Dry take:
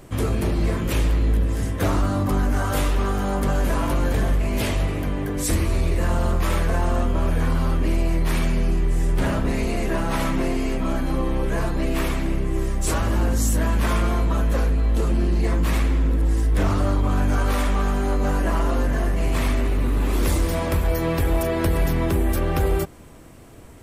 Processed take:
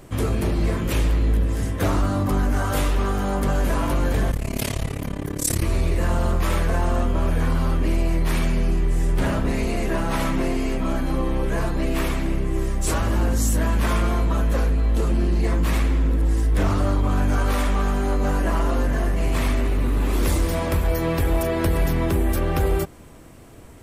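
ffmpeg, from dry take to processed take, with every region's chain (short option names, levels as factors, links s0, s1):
-filter_complex "[0:a]asettb=1/sr,asplit=3[s0][s1][s2];[s0]atrim=end=4.314[s3];[s1]atrim=start=4.31:end=5.63,asetpts=PTS-STARTPTS,afade=t=in:d=0.004:c=qsin,afade=t=out:st=1.316:d=0.004:c=qsin,highpass=59,bass=f=250:g=3,treble=f=4000:g=8,tremolo=f=35:d=0.947[s4];[s2]atrim=start=5.626[s5];[s3][s4]acrossfade=d=0.004:c1=hsin:c2=qsin[s6];[s6][s5]acrossfade=d=0.004:c1=qsin:c2=hsin"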